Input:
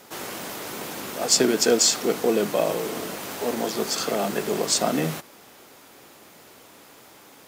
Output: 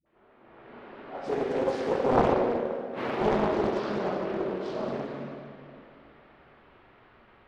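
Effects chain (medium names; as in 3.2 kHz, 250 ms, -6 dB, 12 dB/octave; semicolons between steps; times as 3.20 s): Doppler pass-by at 2.68 s, 36 m/s, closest 2.5 m; high-pass 180 Hz 6 dB/octave; added noise white -68 dBFS; treble shelf 4.1 kHz -11 dB; level rider gain up to 12 dB; phase dispersion highs, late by 62 ms, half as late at 420 Hz; in parallel at -3 dB: saturation -21.5 dBFS, distortion -13 dB; on the sum: inverted gate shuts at -16 dBFS, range -35 dB; plate-style reverb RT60 2.5 s, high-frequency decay 0.8×, pre-delay 0 ms, DRR -5 dB; level-controlled noise filter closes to 2.5 kHz, open at -28 dBFS; distance through air 400 m; loudspeaker Doppler distortion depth 0.91 ms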